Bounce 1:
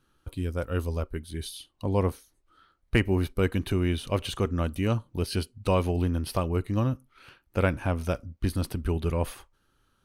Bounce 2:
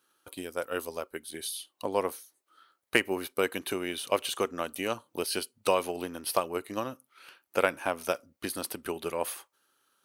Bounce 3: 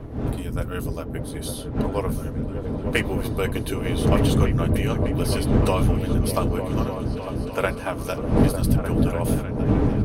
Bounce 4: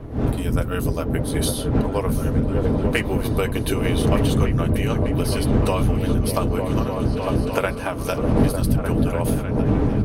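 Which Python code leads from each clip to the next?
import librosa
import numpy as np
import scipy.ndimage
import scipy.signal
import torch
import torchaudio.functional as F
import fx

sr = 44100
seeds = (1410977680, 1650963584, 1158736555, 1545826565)

y1 = fx.transient(x, sr, attack_db=6, sustain_db=1)
y1 = scipy.signal.sosfilt(scipy.signal.butter(2, 430.0, 'highpass', fs=sr, output='sos'), y1)
y1 = fx.high_shelf(y1, sr, hz=7300.0, db=11.0)
y1 = F.gain(torch.from_numpy(y1), -1.5).numpy()
y2 = fx.dmg_wind(y1, sr, seeds[0], corner_hz=260.0, level_db=-28.0)
y2 = fx.notch_comb(y2, sr, f0_hz=180.0)
y2 = fx.echo_opening(y2, sr, ms=301, hz=200, octaves=1, feedback_pct=70, wet_db=0)
y2 = F.gain(torch.from_numpy(y2), 2.5).numpy()
y3 = fx.recorder_agc(y2, sr, target_db=-11.5, rise_db_per_s=26.0, max_gain_db=30)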